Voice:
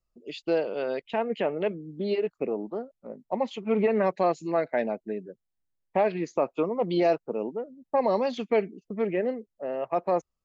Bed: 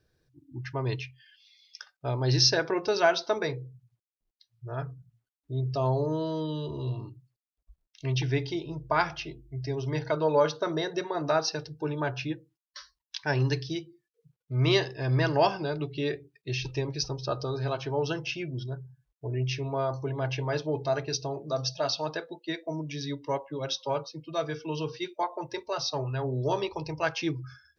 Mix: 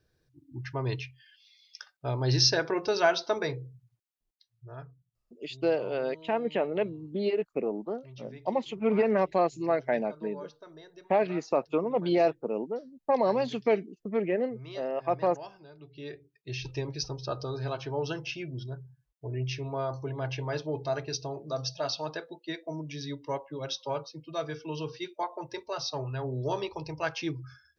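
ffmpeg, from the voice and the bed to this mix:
ffmpeg -i stem1.wav -i stem2.wav -filter_complex "[0:a]adelay=5150,volume=-1dB[link_01];[1:a]volume=16.5dB,afade=type=out:start_time=4.15:duration=0.9:silence=0.105925,afade=type=in:start_time=15.77:duration=0.99:silence=0.133352[link_02];[link_01][link_02]amix=inputs=2:normalize=0" out.wav

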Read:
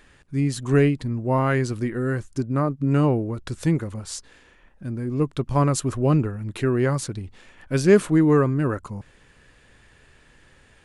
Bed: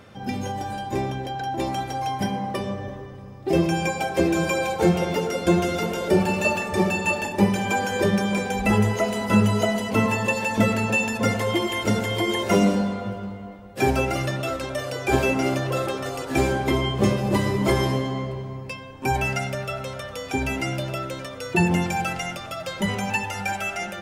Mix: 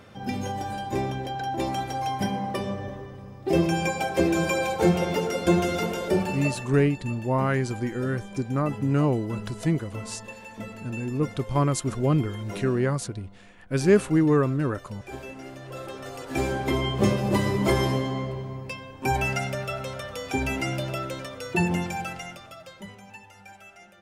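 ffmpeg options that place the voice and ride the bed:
ffmpeg -i stem1.wav -i stem2.wav -filter_complex "[0:a]adelay=6000,volume=-3dB[link_01];[1:a]volume=15dB,afade=type=out:start_time=5.83:duration=0.97:silence=0.149624,afade=type=in:start_time=15.54:duration=1.49:silence=0.149624,afade=type=out:start_time=21.12:duration=1.84:silence=0.112202[link_02];[link_01][link_02]amix=inputs=2:normalize=0" out.wav

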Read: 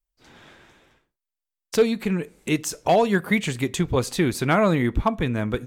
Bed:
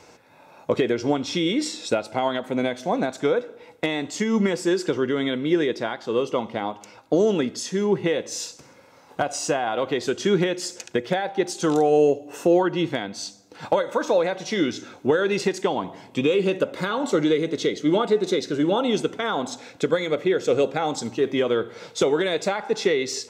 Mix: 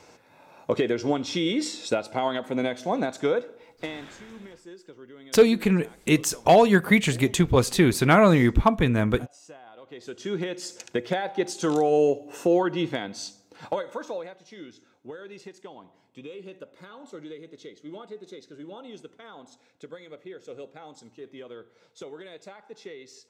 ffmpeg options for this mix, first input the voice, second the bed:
ffmpeg -i stem1.wav -i stem2.wav -filter_complex "[0:a]adelay=3600,volume=2.5dB[link_01];[1:a]volume=18dB,afade=type=out:start_time=3.36:duration=0.84:silence=0.0891251,afade=type=in:start_time=9.84:duration=1.19:silence=0.0944061,afade=type=out:start_time=13.17:duration=1.21:silence=0.133352[link_02];[link_01][link_02]amix=inputs=2:normalize=0" out.wav

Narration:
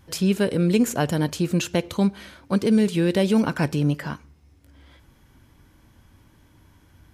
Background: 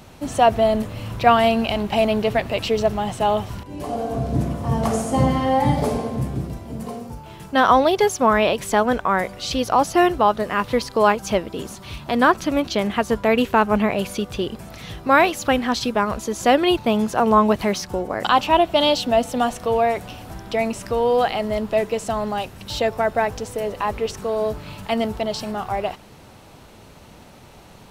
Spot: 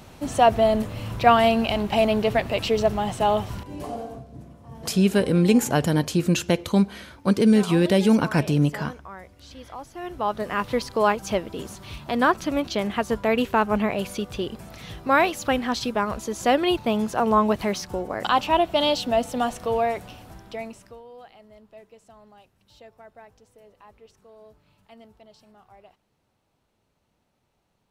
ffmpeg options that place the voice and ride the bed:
ffmpeg -i stem1.wav -i stem2.wav -filter_complex "[0:a]adelay=4750,volume=1.5dB[link_01];[1:a]volume=15.5dB,afade=type=out:start_time=3.67:duration=0.58:silence=0.105925,afade=type=in:start_time=10.01:duration=0.48:silence=0.141254,afade=type=out:start_time=19.78:duration=1.25:silence=0.0707946[link_02];[link_01][link_02]amix=inputs=2:normalize=0" out.wav

